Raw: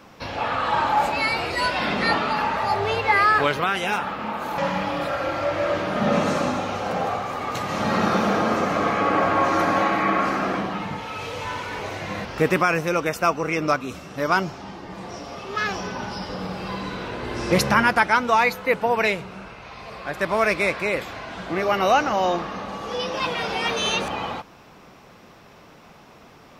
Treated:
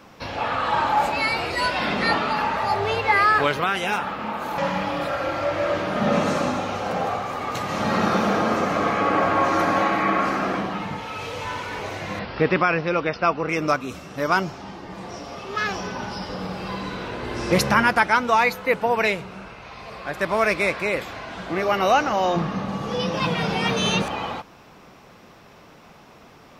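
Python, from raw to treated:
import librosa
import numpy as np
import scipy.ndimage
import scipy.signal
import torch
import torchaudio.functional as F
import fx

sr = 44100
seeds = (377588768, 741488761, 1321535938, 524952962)

y = fx.steep_lowpass(x, sr, hz=5200.0, slope=72, at=(12.19, 13.49))
y = fx.peak_eq(y, sr, hz=150.0, db=14.5, octaves=1.2, at=(22.36, 24.02))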